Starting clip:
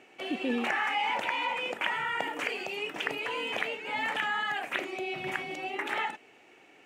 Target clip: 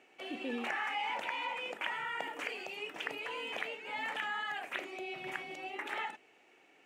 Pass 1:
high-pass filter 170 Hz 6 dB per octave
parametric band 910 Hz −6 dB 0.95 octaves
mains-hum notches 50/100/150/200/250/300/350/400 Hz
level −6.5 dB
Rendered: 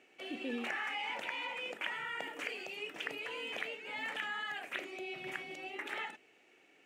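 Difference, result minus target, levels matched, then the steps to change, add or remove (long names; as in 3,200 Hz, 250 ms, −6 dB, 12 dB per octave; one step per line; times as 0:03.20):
1,000 Hz band −3.5 dB
remove: parametric band 910 Hz −6 dB 0.95 octaves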